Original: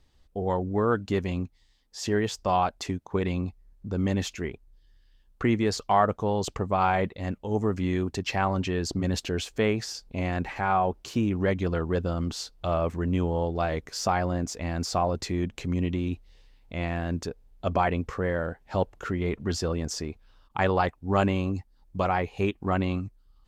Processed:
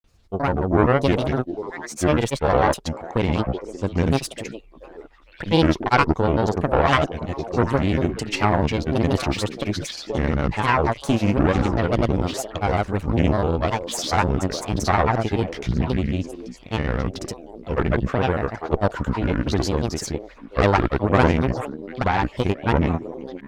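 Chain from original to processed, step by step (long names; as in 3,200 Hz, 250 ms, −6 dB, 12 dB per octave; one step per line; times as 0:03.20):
echo through a band-pass that steps 430 ms, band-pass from 400 Hz, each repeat 1.4 octaves, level −6.5 dB
harmonic generator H 4 −11 dB, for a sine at −8.5 dBFS
granular cloud, pitch spread up and down by 7 semitones
level +6 dB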